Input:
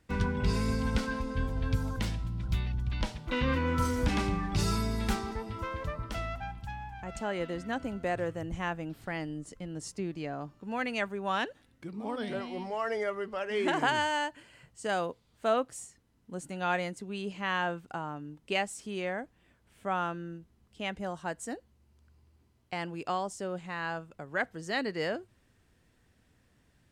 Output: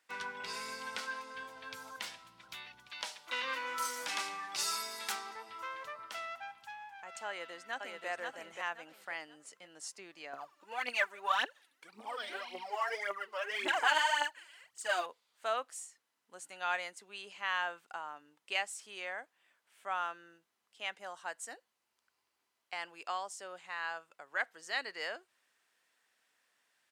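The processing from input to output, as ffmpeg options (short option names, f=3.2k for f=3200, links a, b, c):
-filter_complex "[0:a]asettb=1/sr,asplit=3[a][b][c];[a]atrim=end=2.874[d];[b]atrim=start=2.87:end=5.12,asetpts=PTS-STARTPTS,afade=t=in:d=0.004:c=qsin,afade=t=out:st=2.246:d=0.004:c=qsin,bass=f=250:g=-6,treble=f=4k:g=6[e];[c]atrim=start=5.116[f];[d][e]acrossfade=d=0.004:c1=hsin:c2=qsin[g];[g][f]acrossfade=d=0.004:c1=qsin:c2=hsin,asplit=2[h][i];[i]afade=t=in:st=7.27:d=0.01,afade=t=out:st=8.08:d=0.01,aecho=0:1:530|1060|1590|2120:0.668344|0.200503|0.060151|0.0180453[j];[h][j]amix=inputs=2:normalize=0,asettb=1/sr,asplit=3[k][l][m];[k]atrim=end=10.334[n];[l]atrim=start=10.33:end=15.06,asetpts=PTS-STARTPTS,afade=t=in:d=0.004:c=qsin,afade=t=out:st=4.726:d=0.004:c=qsin,aphaser=in_gain=1:out_gain=1:delay=3.6:decay=0.72:speed=1.8:type=triangular[o];[m]atrim=start=15.056[p];[n][o]acrossfade=d=0.004:c1=hsin:c2=qsin[q];[q][p]acrossfade=d=0.004:c1=qsin:c2=hsin,highpass=920,volume=-1.5dB"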